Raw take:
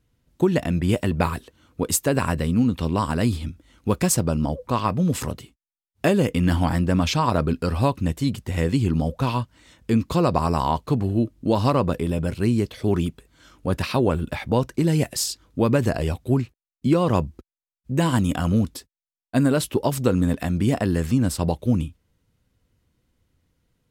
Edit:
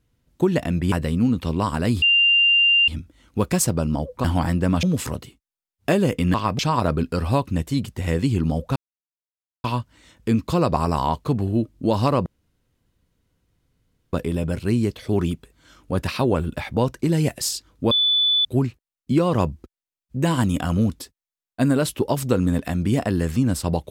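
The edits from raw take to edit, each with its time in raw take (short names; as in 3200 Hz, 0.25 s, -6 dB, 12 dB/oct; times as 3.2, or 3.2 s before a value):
0.92–2.28 cut
3.38 add tone 2790 Hz -13 dBFS 0.86 s
4.74–4.99 swap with 6.5–7.09
9.26 insert silence 0.88 s
11.88 insert room tone 1.87 s
15.66–16.2 bleep 3480 Hz -15.5 dBFS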